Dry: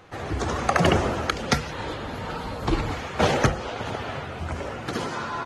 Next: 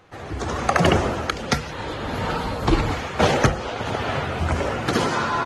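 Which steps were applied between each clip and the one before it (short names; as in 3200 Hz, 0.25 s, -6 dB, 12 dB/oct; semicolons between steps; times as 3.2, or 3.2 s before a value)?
AGC gain up to 11.5 dB; gain -3 dB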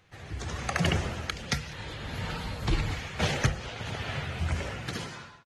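ending faded out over 0.82 s; band shelf 560 Hz -8.5 dB 2.9 oct; echo 0.198 s -23 dB; gain -5.5 dB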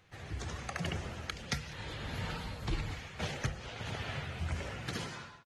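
vocal rider within 5 dB 0.5 s; gain -7 dB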